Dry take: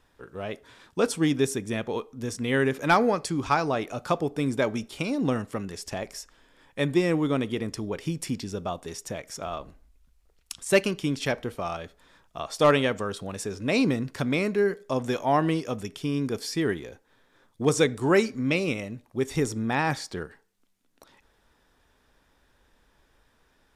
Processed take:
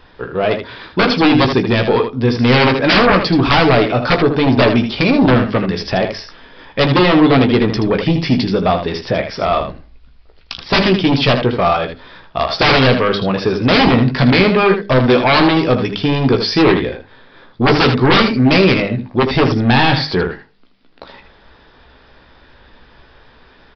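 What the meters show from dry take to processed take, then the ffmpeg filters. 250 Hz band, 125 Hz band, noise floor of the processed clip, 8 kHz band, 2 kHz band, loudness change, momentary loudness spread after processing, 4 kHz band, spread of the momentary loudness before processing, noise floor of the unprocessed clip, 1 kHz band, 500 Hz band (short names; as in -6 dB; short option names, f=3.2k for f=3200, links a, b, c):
+14.0 dB, +15.5 dB, -47 dBFS, n/a, +14.5 dB, +13.5 dB, 9 LU, +18.0 dB, 14 LU, -66 dBFS, +13.5 dB, +12.0 dB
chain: -af "bandreject=f=50:t=h:w=6,bandreject=f=100:t=h:w=6,bandreject=f=150:t=h:w=6,bandreject=f=200:t=h:w=6,bandreject=f=250:t=h:w=6,bandreject=f=300:t=h:w=6,bandreject=f=350:t=h:w=6,aeval=exprs='0.376*(cos(1*acos(clip(val(0)/0.376,-1,1)))-cos(1*PI/2))+0.0422*(cos(3*acos(clip(val(0)/0.376,-1,1)))-cos(3*PI/2))':c=same,aresample=16000,aeval=exprs='0.398*sin(PI/2*7.94*val(0)/0.398)':c=same,aresample=44100,aecho=1:1:16|79:0.422|0.398,aresample=11025,aresample=44100"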